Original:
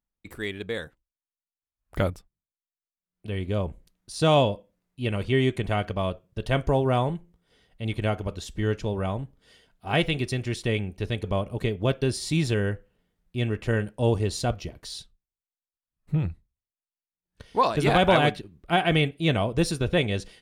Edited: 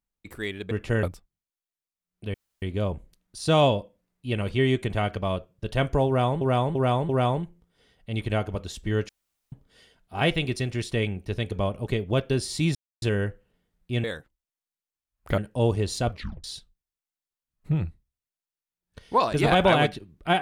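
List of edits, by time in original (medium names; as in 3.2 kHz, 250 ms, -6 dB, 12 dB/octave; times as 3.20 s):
0.71–2.05 s: swap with 13.49–13.81 s
3.36 s: insert room tone 0.28 s
6.81–7.15 s: loop, 4 plays
8.81–9.24 s: room tone
12.47 s: insert silence 0.27 s
14.55 s: tape stop 0.32 s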